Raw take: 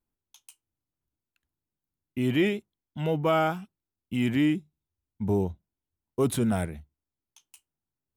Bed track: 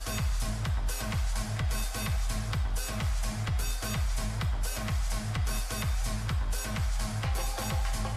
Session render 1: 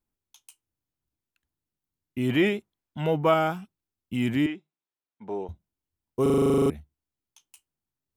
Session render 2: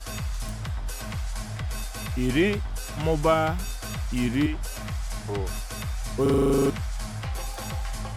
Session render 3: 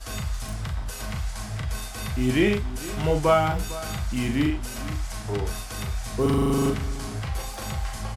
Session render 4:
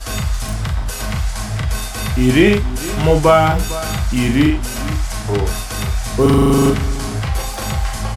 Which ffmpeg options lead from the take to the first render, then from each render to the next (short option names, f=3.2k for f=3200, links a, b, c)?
-filter_complex "[0:a]asettb=1/sr,asplit=3[a][b][c];[a]atrim=end=2.294[d];[b]atrim=start=2.29:end=3.34,asetpts=PTS-STARTPTS,afade=t=in:d=0.004:c=qsin,afade=t=out:st=1.046:d=0.004:c=qsin,equalizer=f=1.1k:t=o:w=2.6:g=5[e];[c]atrim=start=3.336[f];[d][e]acrossfade=d=0.004:c1=hsin:c2=qsin[g];[g][f]acrossfade=d=0.004:c1=qsin:c2=hsin,asettb=1/sr,asplit=3[h][i][j];[h]atrim=end=4.464[k];[i]atrim=start=4.46:end=5.49,asetpts=PTS-STARTPTS,afade=t=in:d=0.004:c=qsin,afade=t=out:st=1.026:d=0.004:c=qsin,highpass=470,lowpass=3.4k[l];[j]atrim=start=5.486[m];[k][l]acrossfade=d=0.004:c1=hsin:c2=qsin[n];[n][m]acrossfade=d=0.004:c1=qsin:c2=hsin,asplit=13[o][p][q][r][s][t][u][v][w][x][y][z][aa];[o]atrim=end=6.262[ab];[p]atrim=start=6.218:end=6.262[ac];[q]atrim=start=6.218:end=6.262[ad];[r]atrim=start=6.218:end=6.262[ae];[s]atrim=start=6.218:end=6.262[af];[t]atrim=start=6.218:end=6.262[ag];[u]atrim=start=6.218:end=6.262[ah];[v]atrim=start=6.218:end=6.262[ai];[w]atrim=start=6.218:end=6.262[aj];[x]atrim=start=6.218:end=6.262[ak];[y]atrim=start=6.218:end=6.262[al];[z]atrim=start=6.218:end=6.262[am];[aa]atrim=start=6.698[an];[ab][ac]acrossfade=d=0.004:c1=hsin:c2=hsin[ao];[ao][ad]acrossfade=d=0.004:c1=hsin:c2=hsin[ap];[ap][ae]acrossfade=d=0.004:c1=hsin:c2=hsin[aq];[aq][af]acrossfade=d=0.004:c1=hsin:c2=hsin[ar];[ar][ag]acrossfade=d=0.004:c1=hsin:c2=hsin[as];[as][ah]acrossfade=d=0.004:c1=hsin:c2=hsin[at];[at][ai]acrossfade=d=0.004:c1=hsin:c2=hsin[au];[au][aj]acrossfade=d=0.004:c1=hsin:c2=hsin[av];[av][ak]acrossfade=d=0.004:c1=hsin:c2=hsin[aw];[aw][al]acrossfade=d=0.004:c1=hsin:c2=hsin[ax];[ax][am]acrossfade=d=0.004:c1=hsin:c2=hsin[ay];[ay][an]acrossfade=d=0.004:c1=hsin:c2=hsin"
-filter_complex "[1:a]volume=-1dB[a];[0:a][a]amix=inputs=2:normalize=0"
-filter_complex "[0:a]asplit=2[a][b];[b]adelay=39,volume=-5dB[c];[a][c]amix=inputs=2:normalize=0,asplit=2[d][e];[e]adelay=454.8,volume=-16dB,highshelf=f=4k:g=-10.2[f];[d][f]amix=inputs=2:normalize=0"
-af "volume=10dB,alimiter=limit=-1dB:level=0:latency=1"